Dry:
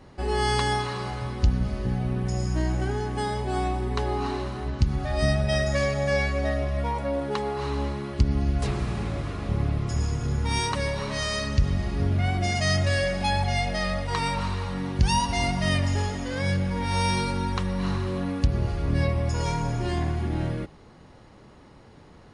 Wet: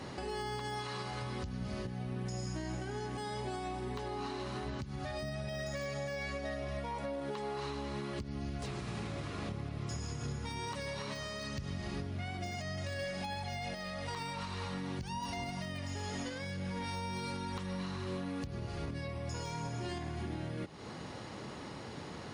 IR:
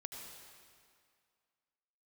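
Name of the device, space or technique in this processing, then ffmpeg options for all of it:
broadcast voice chain: -af "highpass=100,deesser=0.95,acompressor=threshold=-41dB:ratio=5,equalizer=frequency=5400:width_type=o:width=2.6:gain=5,alimiter=level_in=12dB:limit=-24dB:level=0:latency=1:release=249,volume=-12dB,volume=6dB"

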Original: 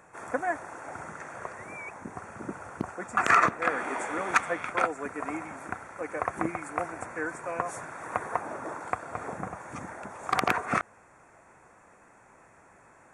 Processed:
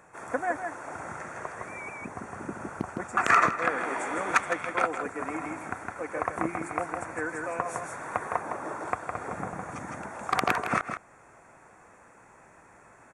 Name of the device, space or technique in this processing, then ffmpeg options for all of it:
ducked delay: -filter_complex "[0:a]asplit=3[link_01][link_02][link_03];[link_02]adelay=160,volume=-2dB[link_04];[link_03]apad=whole_len=586212[link_05];[link_04][link_05]sidechaincompress=threshold=-32dB:ratio=5:attack=50:release=591[link_06];[link_01][link_06]amix=inputs=2:normalize=0"

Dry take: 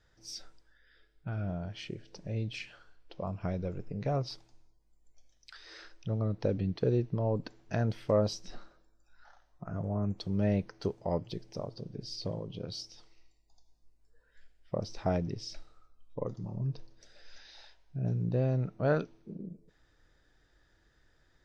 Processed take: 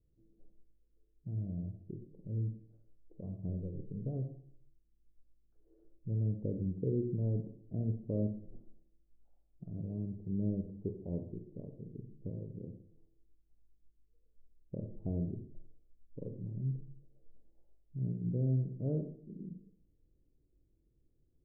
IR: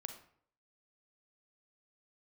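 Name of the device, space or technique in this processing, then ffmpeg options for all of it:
next room: -filter_complex "[0:a]lowpass=frequency=400:width=0.5412,lowpass=frequency=400:width=1.3066[link_01];[1:a]atrim=start_sample=2205[link_02];[link_01][link_02]afir=irnorm=-1:irlink=0"

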